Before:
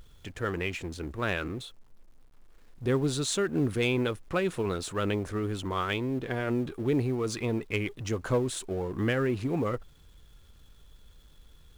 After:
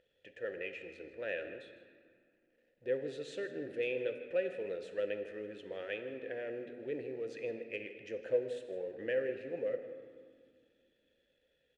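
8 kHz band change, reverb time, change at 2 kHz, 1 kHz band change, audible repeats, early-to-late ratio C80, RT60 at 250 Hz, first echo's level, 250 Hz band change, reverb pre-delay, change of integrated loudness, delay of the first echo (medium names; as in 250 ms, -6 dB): under -25 dB, 2.0 s, -9.0 dB, -20.5 dB, 1, 9.0 dB, 2.9 s, -16.5 dB, -16.5 dB, 3 ms, -9.0 dB, 158 ms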